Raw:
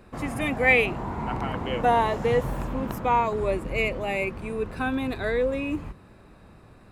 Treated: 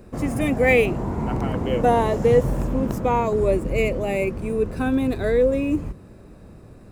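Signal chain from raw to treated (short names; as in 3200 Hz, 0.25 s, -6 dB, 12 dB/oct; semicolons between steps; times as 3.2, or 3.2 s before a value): median filter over 3 samples; band shelf 1800 Hz -8.5 dB 2.8 oct; gain +7 dB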